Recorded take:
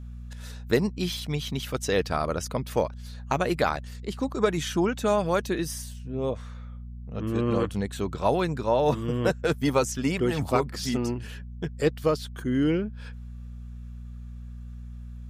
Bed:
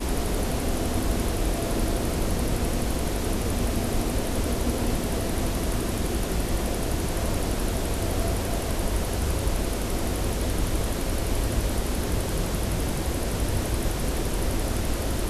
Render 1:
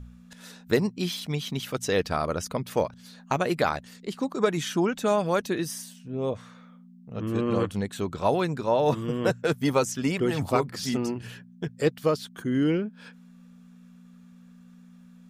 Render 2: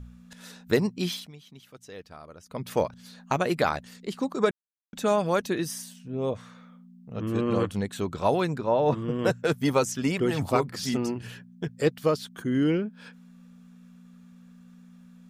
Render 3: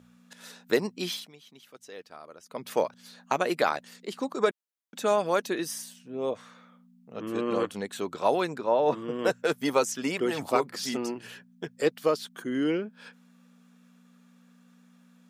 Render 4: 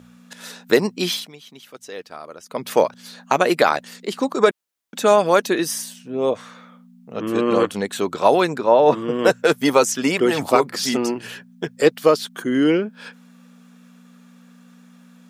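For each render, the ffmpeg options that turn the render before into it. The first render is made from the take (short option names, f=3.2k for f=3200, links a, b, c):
-af "bandreject=f=60:t=h:w=4,bandreject=f=120:t=h:w=4"
-filter_complex "[0:a]asettb=1/sr,asplit=3[a][b][c];[a]atrim=end=8.584[d];[b]atrim=start=8.58:end=9.19,asetpts=PTS-STARTPTS,afade=t=in:d=0.004:c=qsin,afade=t=out:st=0.606:d=0.004:c=qsin,aemphasis=mode=reproduction:type=75kf[e];[c]atrim=start=9.186[f];[d][e]acrossfade=d=0.004:c1=hsin:c2=qsin[g];[g][f]acrossfade=d=0.004:c1=qsin:c2=hsin,asplit=5[h][i][j][k][l];[h]atrim=end=1.31,asetpts=PTS-STARTPTS,afade=t=out:st=1.13:d=0.18:silence=0.11885[m];[i]atrim=start=1.31:end=2.48,asetpts=PTS-STARTPTS,volume=-18.5dB[n];[j]atrim=start=2.48:end=4.51,asetpts=PTS-STARTPTS,afade=t=in:d=0.18:silence=0.11885,afade=t=out:st=2.026:d=0.004:c=hsin[o];[k]atrim=start=4.51:end=4.93,asetpts=PTS-STARTPTS,volume=0[p];[l]atrim=start=4.93,asetpts=PTS-STARTPTS,afade=t=in:d=0.004:c=hsin[q];[m][n][o][p][q]concat=n=5:v=0:a=1"
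-af "highpass=300"
-af "volume=10dB,alimiter=limit=-2dB:level=0:latency=1"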